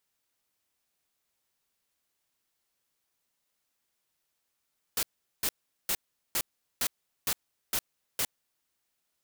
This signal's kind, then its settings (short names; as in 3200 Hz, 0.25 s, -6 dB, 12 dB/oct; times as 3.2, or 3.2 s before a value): noise bursts white, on 0.06 s, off 0.40 s, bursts 8, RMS -28.5 dBFS